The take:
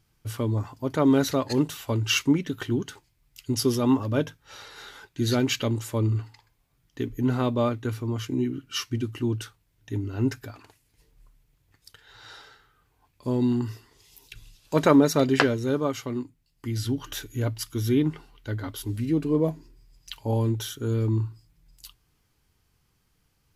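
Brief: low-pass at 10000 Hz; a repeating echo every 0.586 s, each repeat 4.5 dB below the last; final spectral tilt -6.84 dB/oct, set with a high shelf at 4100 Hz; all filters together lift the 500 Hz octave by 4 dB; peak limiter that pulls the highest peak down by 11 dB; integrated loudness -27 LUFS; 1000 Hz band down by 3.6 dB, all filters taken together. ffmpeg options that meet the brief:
-af "lowpass=10k,equalizer=f=500:t=o:g=6.5,equalizer=f=1k:t=o:g=-6.5,highshelf=f=4.1k:g=-4.5,alimiter=limit=-15dB:level=0:latency=1,aecho=1:1:586|1172|1758|2344|2930|3516|4102|4688|5274:0.596|0.357|0.214|0.129|0.0772|0.0463|0.0278|0.0167|0.01,volume=-0.5dB"

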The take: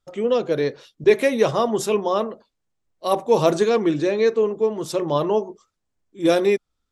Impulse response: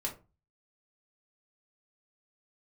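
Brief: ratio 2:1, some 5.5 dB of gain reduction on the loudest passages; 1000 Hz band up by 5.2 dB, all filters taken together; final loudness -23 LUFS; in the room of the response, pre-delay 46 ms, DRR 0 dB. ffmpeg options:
-filter_complex "[0:a]equalizer=f=1k:t=o:g=6.5,acompressor=threshold=-19dB:ratio=2,asplit=2[a][b];[1:a]atrim=start_sample=2205,adelay=46[c];[b][c]afir=irnorm=-1:irlink=0,volume=-2dB[d];[a][d]amix=inputs=2:normalize=0,volume=-4dB"

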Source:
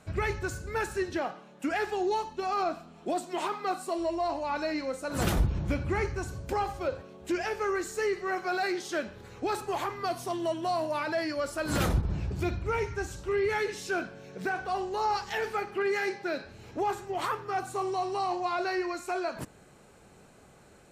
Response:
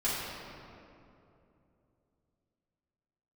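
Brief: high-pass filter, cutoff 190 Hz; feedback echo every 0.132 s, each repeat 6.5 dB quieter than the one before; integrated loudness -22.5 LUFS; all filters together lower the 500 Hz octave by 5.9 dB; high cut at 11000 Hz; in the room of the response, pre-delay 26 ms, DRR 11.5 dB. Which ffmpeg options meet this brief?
-filter_complex "[0:a]highpass=190,lowpass=11k,equalizer=f=500:t=o:g=-8.5,aecho=1:1:132|264|396|528|660|792:0.473|0.222|0.105|0.0491|0.0231|0.0109,asplit=2[a][b];[1:a]atrim=start_sample=2205,adelay=26[c];[b][c]afir=irnorm=-1:irlink=0,volume=-20.5dB[d];[a][d]amix=inputs=2:normalize=0,volume=11dB"

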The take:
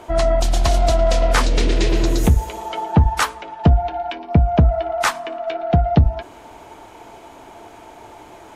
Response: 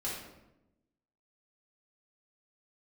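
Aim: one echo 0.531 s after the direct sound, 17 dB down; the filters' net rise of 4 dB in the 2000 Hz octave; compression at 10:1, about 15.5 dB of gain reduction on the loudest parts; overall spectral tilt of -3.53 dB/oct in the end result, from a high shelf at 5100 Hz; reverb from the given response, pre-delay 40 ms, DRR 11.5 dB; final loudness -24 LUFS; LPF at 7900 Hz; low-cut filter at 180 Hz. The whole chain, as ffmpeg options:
-filter_complex "[0:a]highpass=180,lowpass=7.9k,equalizer=f=2k:t=o:g=4,highshelf=f=5.1k:g=8,acompressor=threshold=-28dB:ratio=10,aecho=1:1:531:0.141,asplit=2[a][b];[1:a]atrim=start_sample=2205,adelay=40[c];[b][c]afir=irnorm=-1:irlink=0,volume=-14.5dB[d];[a][d]amix=inputs=2:normalize=0,volume=8.5dB"

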